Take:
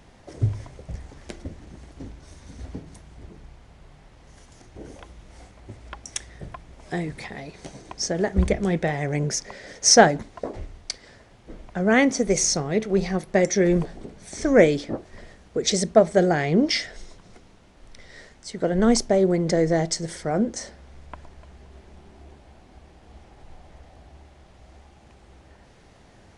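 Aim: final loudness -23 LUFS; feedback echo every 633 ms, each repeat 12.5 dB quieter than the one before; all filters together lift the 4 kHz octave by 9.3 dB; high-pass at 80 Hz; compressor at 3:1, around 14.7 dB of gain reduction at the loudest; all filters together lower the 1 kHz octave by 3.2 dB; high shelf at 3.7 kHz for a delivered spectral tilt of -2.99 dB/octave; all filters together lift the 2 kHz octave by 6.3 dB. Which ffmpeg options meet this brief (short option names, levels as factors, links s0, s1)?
-af "highpass=80,equalizer=f=1000:t=o:g=-7.5,equalizer=f=2000:t=o:g=6.5,highshelf=f=3700:g=9,equalizer=f=4000:t=o:g=4.5,acompressor=threshold=0.0708:ratio=3,aecho=1:1:633|1266|1899:0.237|0.0569|0.0137,volume=1.58"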